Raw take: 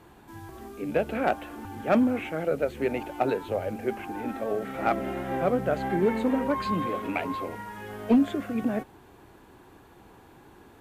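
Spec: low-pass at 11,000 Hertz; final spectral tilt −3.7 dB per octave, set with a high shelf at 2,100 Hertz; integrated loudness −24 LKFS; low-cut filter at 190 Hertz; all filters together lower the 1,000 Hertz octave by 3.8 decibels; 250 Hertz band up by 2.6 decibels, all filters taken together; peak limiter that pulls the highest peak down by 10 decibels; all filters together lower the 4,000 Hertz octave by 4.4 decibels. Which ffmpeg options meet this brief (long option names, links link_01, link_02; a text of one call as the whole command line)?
ffmpeg -i in.wav -af "highpass=190,lowpass=11000,equalizer=frequency=250:width_type=o:gain=4.5,equalizer=frequency=1000:width_type=o:gain=-6,highshelf=frequency=2100:gain=3,equalizer=frequency=4000:width_type=o:gain=-8.5,volume=6.5dB,alimiter=limit=-13dB:level=0:latency=1" out.wav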